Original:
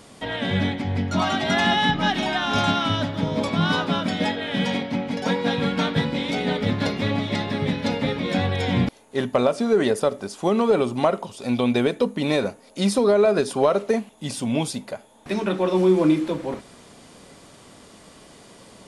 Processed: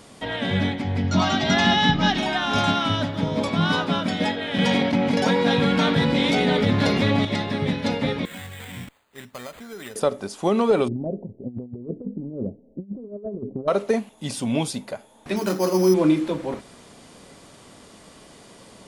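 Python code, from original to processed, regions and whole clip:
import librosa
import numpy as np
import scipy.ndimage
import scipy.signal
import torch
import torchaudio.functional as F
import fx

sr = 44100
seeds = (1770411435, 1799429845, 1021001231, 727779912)

y = fx.chain(x, sr, fx.lowpass(hz=6300.0, slope=24),
    fx.bass_treble(bass_db=5, treble_db=7), at=(1.04, 2.18))
y = fx.chain(y, sr, fx.gate_hold(open_db=-17.0, close_db=-24.0, hold_ms=71.0, range_db=-21, attack_ms=1.4, release_ms=100.0),
    fx.highpass(hz=49.0, slope=12),
    fx.env_flatten(amount_pct=70), at=(4.58, 7.25))
y = fx.chain(y, sr, fx.tone_stack(knobs='5-5-5'),
    fx.resample_bad(factor=8, down='none', up='hold'), at=(8.25, 9.96))
y = fx.chain(y, sr, fx.gaussian_blur(sigma=21.0),
    fx.over_compress(threshold_db=-30.0, ratio=-0.5), at=(10.88, 13.68))
y = fx.chain(y, sr, fx.cvsd(bps=64000),
    fx.highpass(hz=58.0, slope=12),
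    fx.resample_bad(factor=8, down='filtered', up='hold'), at=(15.36, 15.94))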